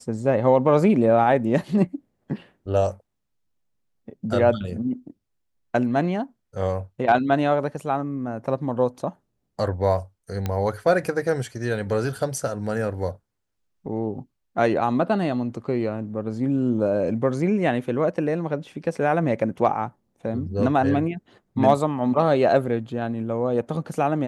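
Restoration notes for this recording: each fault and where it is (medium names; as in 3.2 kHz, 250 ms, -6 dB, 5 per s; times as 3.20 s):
10.46 s: pop -13 dBFS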